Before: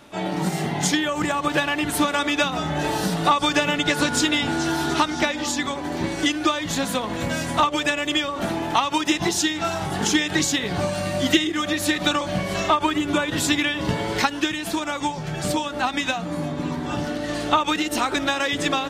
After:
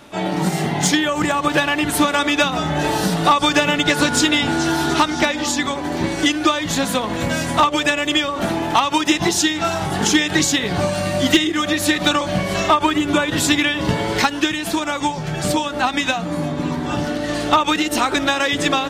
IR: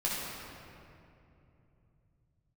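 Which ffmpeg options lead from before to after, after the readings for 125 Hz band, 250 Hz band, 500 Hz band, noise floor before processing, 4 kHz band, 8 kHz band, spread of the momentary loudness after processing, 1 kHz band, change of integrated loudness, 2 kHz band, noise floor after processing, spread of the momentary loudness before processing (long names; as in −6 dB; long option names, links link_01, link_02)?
+4.5 dB, +4.5 dB, +4.5 dB, −31 dBFS, +4.5 dB, +4.5 dB, 6 LU, +4.5 dB, +4.5 dB, +4.5 dB, −26 dBFS, 6 LU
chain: -af "volume=10.5dB,asoftclip=hard,volume=-10.5dB,volume=4.5dB"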